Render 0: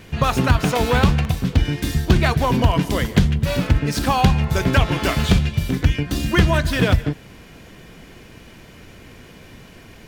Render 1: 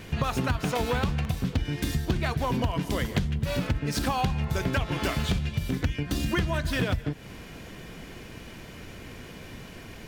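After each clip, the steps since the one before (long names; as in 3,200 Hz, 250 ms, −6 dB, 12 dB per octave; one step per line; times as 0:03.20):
downward compressor 4 to 1, threshold −25 dBFS, peak gain reduction 14 dB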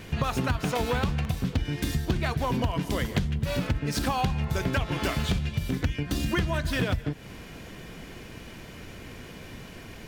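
no processing that can be heard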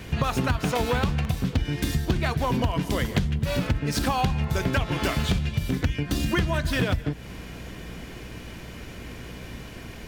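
mains hum 60 Hz, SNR 18 dB
level +2.5 dB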